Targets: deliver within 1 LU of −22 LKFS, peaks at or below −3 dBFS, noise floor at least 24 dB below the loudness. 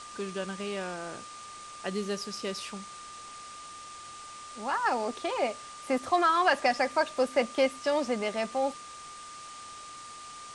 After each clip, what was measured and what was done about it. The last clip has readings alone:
interfering tone 1,200 Hz; level of the tone −44 dBFS; background noise floor −45 dBFS; target noise floor −54 dBFS; integrated loudness −30.0 LKFS; sample peak −12.5 dBFS; target loudness −22.0 LKFS
→ notch filter 1,200 Hz, Q 30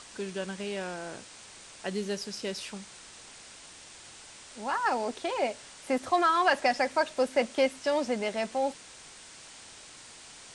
interfering tone none found; background noise floor −50 dBFS; target noise floor −54 dBFS
→ broadband denoise 6 dB, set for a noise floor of −50 dBFS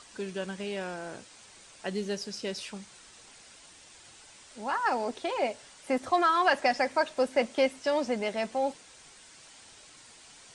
background noise floor −54 dBFS; integrated loudness −30.0 LKFS; sample peak −12.5 dBFS; target loudness −22.0 LKFS
→ level +8 dB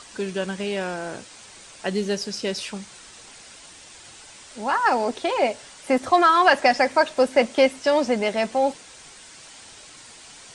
integrated loudness −22.0 LKFS; sample peak −4.5 dBFS; background noise floor −46 dBFS

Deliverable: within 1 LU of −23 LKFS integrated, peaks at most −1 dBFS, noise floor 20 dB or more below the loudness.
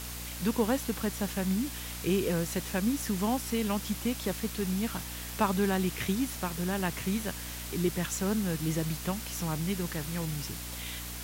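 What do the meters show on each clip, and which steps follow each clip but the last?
mains hum 60 Hz; hum harmonics up to 300 Hz; level of the hum −40 dBFS; background noise floor −40 dBFS; target noise floor −52 dBFS; integrated loudness −31.5 LKFS; sample peak −12.5 dBFS; target loudness −23.0 LKFS
→ mains-hum notches 60/120/180/240/300 Hz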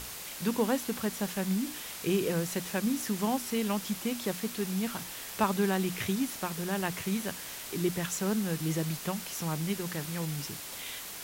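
mains hum none found; background noise floor −42 dBFS; target noise floor −52 dBFS
→ broadband denoise 10 dB, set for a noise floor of −42 dBFS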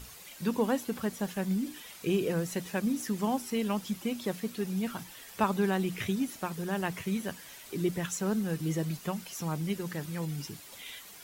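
background noise floor −50 dBFS; target noise floor −53 dBFS
→ broadband denoise 6 dB, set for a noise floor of −50 dBFS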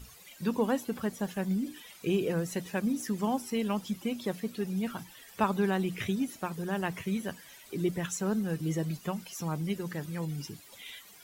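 background noise floor −54 dBFS; integrated loudness −33.0 LKFS; sample peak −13.5 dBFS; target loudness −23.0 LKFS
→ level +10 dB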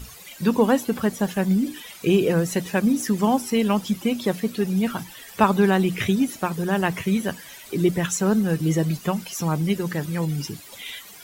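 integrated loudness −23.0 LKFS; sample peak −3.5 dBFS; background noise floor −44 dBFS

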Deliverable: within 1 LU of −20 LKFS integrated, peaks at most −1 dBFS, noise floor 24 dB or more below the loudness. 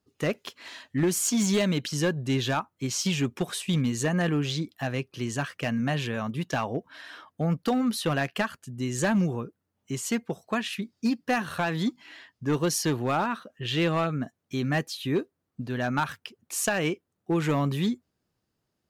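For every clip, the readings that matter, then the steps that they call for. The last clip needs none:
share of clipped samples 0.6%; peaks flattened at −18.5 dBFS; integrated loudness −28.5 LKFS; sample peak −18.5 dBFS; target loudness −20.0 LKFS
→ clipped peaks rebuilt −18.5 dBFS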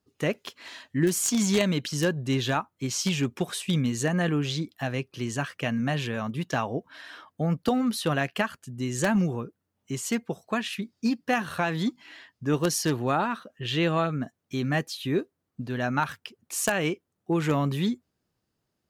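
share of clipped samples 0.0%; integrated loudness −28.0 LKFS; sample peak −9.5 dBFS; target loudness −20.0 LKFS
→ level +8 dB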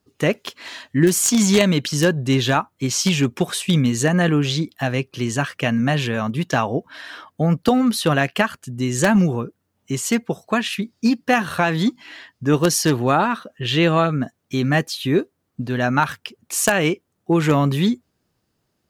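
integrated loudness −20.0 LKFS; sample peak −1.5 dBFS; background noise floor −72 dBFS

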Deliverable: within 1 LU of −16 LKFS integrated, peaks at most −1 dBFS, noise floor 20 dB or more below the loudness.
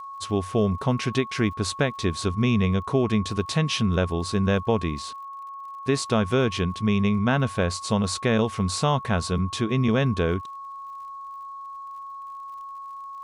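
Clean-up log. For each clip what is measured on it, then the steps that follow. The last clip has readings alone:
crackle rate 58 per second; interfering tone 1,100 Hz; level of the tone −35 dBFS; integrated loudness −24.5 LKFS; sample peak −8.0 dBFS; target loudness −16.0 LKFS
→ click removal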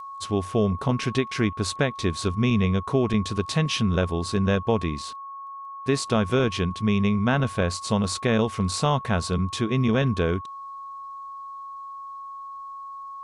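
crackle rate 0.53 per second; interfering tone 1,100 Hz; level of the tone −35 dBFS
→ notch filter 1,100 Hz, Q 30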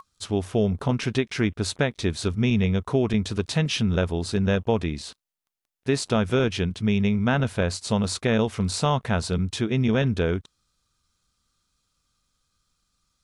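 interfering tone none found; integrated loudness −24.5 LKFS; sample peak −8.5 dBFS; target loudness −16.0 LKFS
→ level +8.5 dB
brickwall limiter −1 dBFS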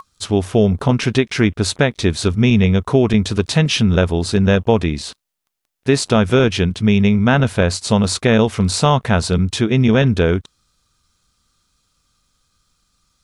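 integrated loudness −16.0 LKFS; sample peak −1.0 dBFS; background noise floor −70 dBFS

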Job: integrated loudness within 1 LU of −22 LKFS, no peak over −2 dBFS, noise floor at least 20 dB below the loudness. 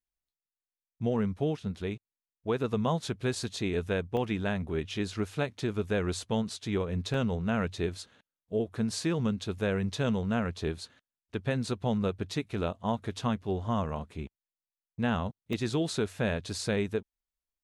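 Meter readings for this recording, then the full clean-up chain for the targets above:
number of dropouts 3; longest dropout 1.7 ms; integrated loudness −32.0 LKFS; sample peak −15.5 dBFS; target loudness −22.0 LKFS
→ repair the gap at 0:04.17/0:07.14/0:15.53, 1.7 ms
level +10 dB

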